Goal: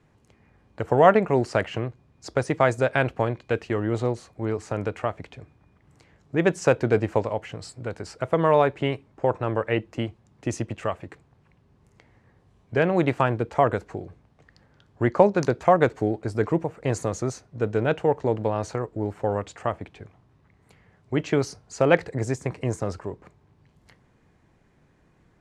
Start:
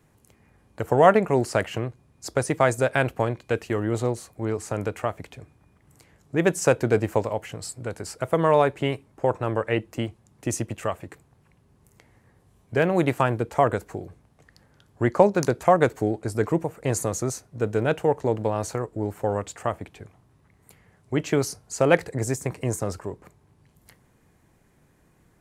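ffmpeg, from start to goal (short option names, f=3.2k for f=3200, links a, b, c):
-af "lowpass=5k"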